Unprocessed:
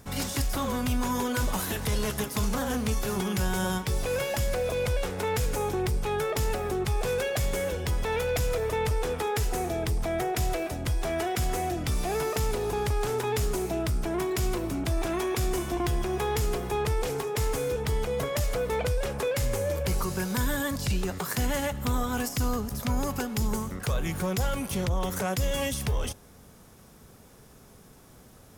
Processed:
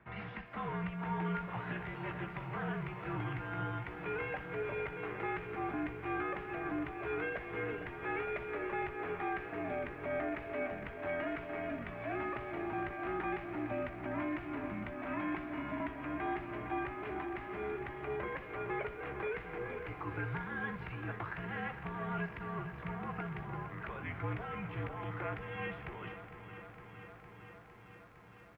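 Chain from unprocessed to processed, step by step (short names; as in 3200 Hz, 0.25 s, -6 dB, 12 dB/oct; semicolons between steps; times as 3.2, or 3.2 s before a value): bell 420 Hz -10.5 dB 3 oct; notch 580 Hz, Q 19; limiter -25.5 dBFS, peak gain reduction 6.5 dB; on a send: thinning echo 62 ms, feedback 22%, high-pass 240 Hz, level -15 dB; on the sum: mistuned SSB -70 Hz 180–2400 Hz; doubler 17 ms -12 dB; lo-fi delay 0.458 s, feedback 80%, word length 12-bit, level -11 dB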